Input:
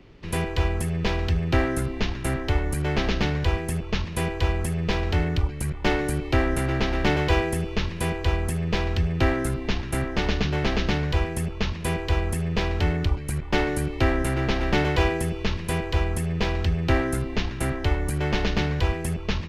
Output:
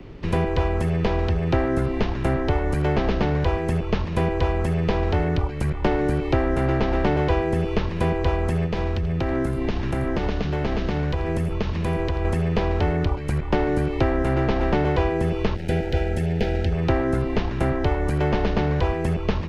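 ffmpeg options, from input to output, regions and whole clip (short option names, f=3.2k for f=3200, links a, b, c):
-filter_complex "[0:a]asettb=1/sr,asplit=3[a][b][c];[a]atrim=end=8.664[d];[b]atrim=start=8.66:end=12.25,asetpts=PTS-STARTPTS,afade=t=in:d=0.004:c=qsin,afade=t=out:st=3.586:d=0.004:c=qsin,acompressor=threshold=-28dB:ratio=5:attack=3.2:release=140:knee=1:detection=peak,aecho=1:1:85:0.158,atrim=end_sample=158319[e];[c]atrim=start=12.246[f];[d][e]acrossfade=d=0.004:c1=hsin:c2=qsin[g];[g][f]acrossfade=d=0.004:c1=qsin:c2=hsin,asettb=1/sr,asplit=3[h][i][j];[h]atrim=end=15.554[k];[i]atrim=start=15.55:end=16.72,asetpts=PTS-STARTPTS,afade=t=in:d=0.004:c=qsin,afade=t=out:st=1.166:d=0.004:c=qsin,equalizer=f=970:w=1.6:g=-7,aeval=exprs='sgn(val(0))*max(abs(val(0))-0.0112,0)':c=same,asuperstop=centerf=1100:order=8:qfactor=2.8[l];[j]atrim=start=16.716[m];[k][l]acrossfade=d=0.004:c1=hsin:c2=qsin[n];[n][m]acrossfade=d=0.004:c1=qsin:c2=hsin,acrossover=split=6200[o][p];[p]acompressor=threshold=-52dB:ratio=4:attack=1:release=60[q];[o][q]amix=inputs=2:normalize=0,tiltshelf=f=1.5k:g=4,acrossover=split=400|1200[r][s][t];[r]acompressor=threshold=-28dB:ratio=4[u];[s]acompressor=threshold=-31dB:ratio=4[v];[t]acompressor=threshold=-43dB:ratio=4[w];[u][v][w]amix=inputs=3:normalize=0,volume=6.5dB"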